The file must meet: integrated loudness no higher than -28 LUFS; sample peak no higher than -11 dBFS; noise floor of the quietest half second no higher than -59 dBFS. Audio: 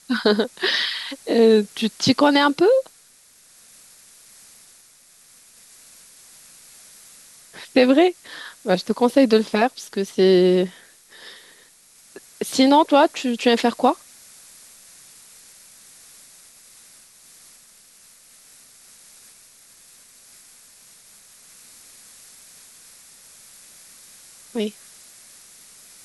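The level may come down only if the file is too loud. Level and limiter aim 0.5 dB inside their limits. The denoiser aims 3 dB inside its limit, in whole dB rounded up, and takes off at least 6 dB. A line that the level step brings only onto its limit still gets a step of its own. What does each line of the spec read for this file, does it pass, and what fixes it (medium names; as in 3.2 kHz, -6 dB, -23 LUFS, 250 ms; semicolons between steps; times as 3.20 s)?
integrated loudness -19.0 LUFS: fail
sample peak -4.5 dBFS: fail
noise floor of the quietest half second -53 dBFS: fail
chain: trim -9.5 dB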